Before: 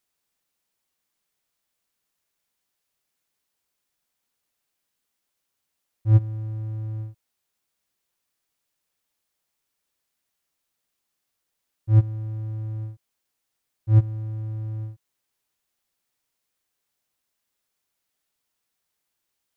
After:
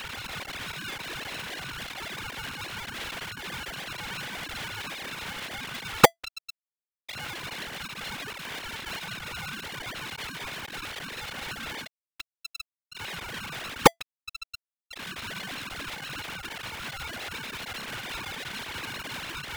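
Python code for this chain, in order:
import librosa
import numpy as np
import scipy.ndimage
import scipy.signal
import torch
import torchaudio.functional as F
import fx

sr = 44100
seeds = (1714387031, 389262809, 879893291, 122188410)

y = fx.sine_speech(x, sr)
y = fx.cheby_harmonics(y, sr, harmonics=(2, 5), levels_db=(-17, -11), full_scale_db=3.5)
y = y * np.sign(np.sin(2.0 * np.pi * 670.0 * np.arange(len(y)) / sr))
y = y * 10.0 ** (-6.5 / 20.0)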